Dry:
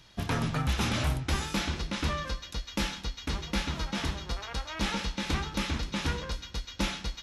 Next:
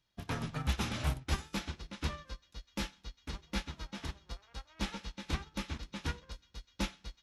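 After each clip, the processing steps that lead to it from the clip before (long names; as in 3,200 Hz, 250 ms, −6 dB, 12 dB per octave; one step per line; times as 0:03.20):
expander for the loud parts 2.5 to 1, over −39 dBFS
level −1.5 dB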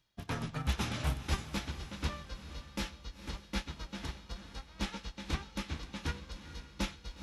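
feedback delay with all-pass diffusion 485 ms, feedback 41%, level −12 dB
reversed playback
upward compression, threshold −41 dBFS
reversed playback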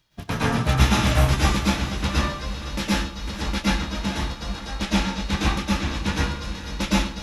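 dense smooth reverb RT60 0.53 s, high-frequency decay 0.65×, pre-delay 100 ms, DRR −7 dB
level +8.5 dB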